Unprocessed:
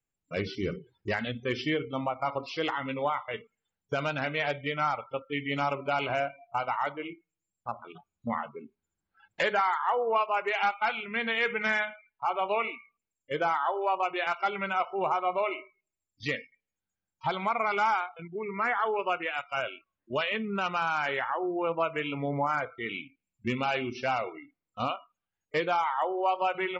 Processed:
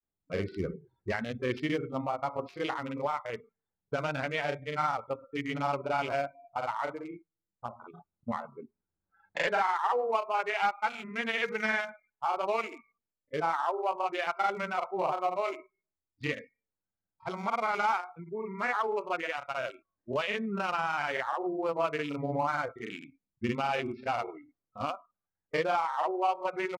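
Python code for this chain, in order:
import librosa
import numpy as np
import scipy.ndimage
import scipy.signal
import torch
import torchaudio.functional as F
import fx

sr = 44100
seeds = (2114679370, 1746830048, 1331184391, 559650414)

y = fx.wiener(x, sr, points=15)
y = fx.granulator(y, sr, seeds[0], grain_ms=100.0, per_s=20.0, spray_ms=36.0, spread_st=0)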